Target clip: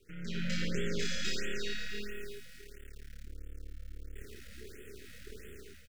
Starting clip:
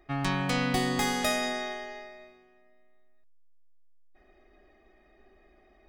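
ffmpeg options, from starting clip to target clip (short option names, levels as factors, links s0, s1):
-filter_complex "[0:a]aeval=exprs='(tanh(14.1*val(0)+0.2)-tanh(0.2))/14.1':c=same,afreqshift=36,lowshelf=f=60:g=-6.5,aresample=16000,aeval=exprs='max(val(0),0)':c=same,aresample=44100,aecho=1:1:5:0.37,acrusher=bits=8:dc=4:mix=0:aa=0.000001,asuperstop=centerf=860:order=12:qfactor=0.99,acompressor=threshold=0.00251:ratio=2.5,equalizer=f=110:t=o:w=2.5:g=3.5,asplit=2[s0][s1];[s1]aecho=0:1:30|69:0.531|0.141[s2];[s0][s2]amix=inputs=2:normalize=0,dynaudnorm=f=130:g=5:m=5.62,afftfilt=real='re*(1-between(b*sr/1024,320*pow(5100/320,0.5+0.5*sin(2*PI*1.5*pts/sr))/1.41,320*pow(5100/320,0.5+0.5*sin(2*PI*1.5*pts/sr))*1.41))':imag='im*(1-between(b*sr/1024,320*pow(5100/320,0.5+0.5*sin(2*PI*1.5*pts/sr))/1.41,320*pow(5100/320,0.5+0.5*sin(2*PI*1.5*pts/sr))*1.41))':win_size=1024:overlap=0.75,volume=0.841"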